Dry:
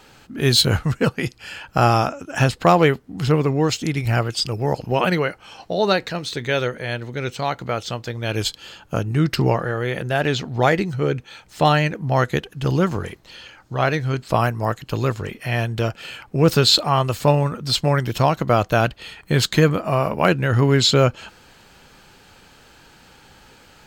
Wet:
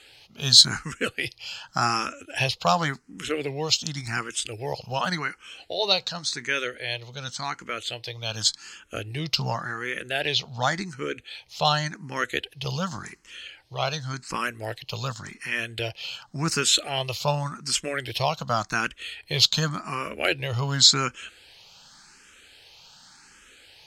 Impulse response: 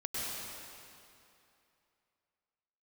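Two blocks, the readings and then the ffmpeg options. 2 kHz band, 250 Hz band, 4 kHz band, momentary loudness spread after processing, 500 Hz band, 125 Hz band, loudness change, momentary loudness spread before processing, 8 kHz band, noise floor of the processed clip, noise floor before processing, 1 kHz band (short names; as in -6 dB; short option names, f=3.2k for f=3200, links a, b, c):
-3.5 dB, -12.0 dB, +1.0 dB, 14 LU, -11.0 dB, -12.0 dB, -5.0 dB, 11 LU, +3.0 dB, -56 dBFS, -51 dBFS, -7.0 dB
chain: -filter_complex "[0:a]lowpass=5.8k,crystalizer=i=10:c=0,asplit=2[a][b];[b]afreqshift=0.89[c];[a][c]amix=inputs=2:normalize=1,volume=-9.5dB"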